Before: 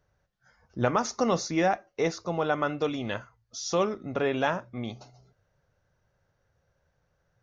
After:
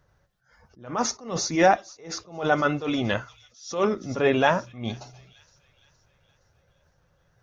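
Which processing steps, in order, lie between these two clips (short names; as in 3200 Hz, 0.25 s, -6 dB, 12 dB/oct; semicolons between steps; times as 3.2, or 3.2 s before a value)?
bin magnitudes rounded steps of 15 dB; thin delay 0.466 s, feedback 49%, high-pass 3600 Hz, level -16.5 dB; attack slew limiter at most 130 dB/s; gain +7.5 dB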